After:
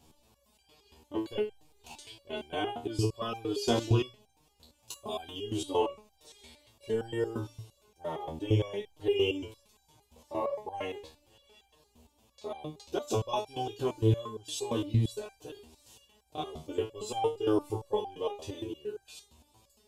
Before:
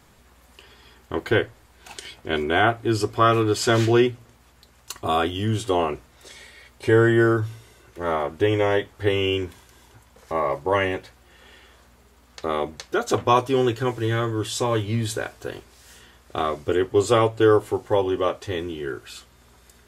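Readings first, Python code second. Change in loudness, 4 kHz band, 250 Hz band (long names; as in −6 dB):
−11.0 dB, −9.0 dB, −11.0 dB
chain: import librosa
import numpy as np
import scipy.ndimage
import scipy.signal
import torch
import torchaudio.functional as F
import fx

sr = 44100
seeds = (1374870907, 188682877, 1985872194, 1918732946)

y = fx.band_shelf(x, sr, hz=1600.0, db=-14.0, octaves=1.0)
y = fx.resonator_held(y, sr, hz=8.7, low_hz=79.0, high_hz=790.0)
y = F.gain(torch.from_numpy(y), 3.5).numpy()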